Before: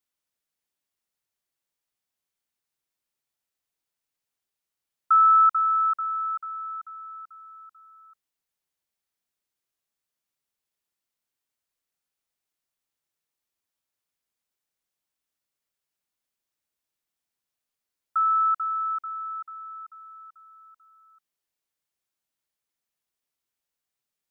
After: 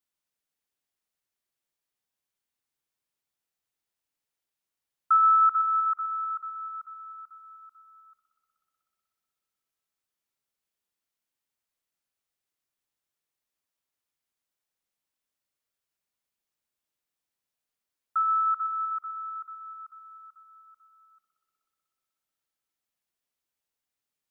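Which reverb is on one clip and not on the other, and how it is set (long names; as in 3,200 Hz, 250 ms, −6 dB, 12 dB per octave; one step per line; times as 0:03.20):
spring reverb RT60 3.4 s, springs 60 ms, chirp 50 ms, DRR 6.5 dB
level −2 dB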